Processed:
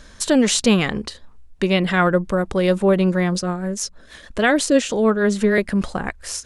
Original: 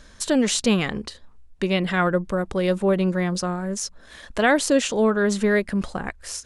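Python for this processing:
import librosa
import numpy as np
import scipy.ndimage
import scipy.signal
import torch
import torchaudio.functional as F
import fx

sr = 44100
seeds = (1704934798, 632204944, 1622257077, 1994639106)

y = fx.rotary(x, sr, hz=6.3, at=(3.39, 5.58))
y = y * 10.0 ** (4.0 / 20.0)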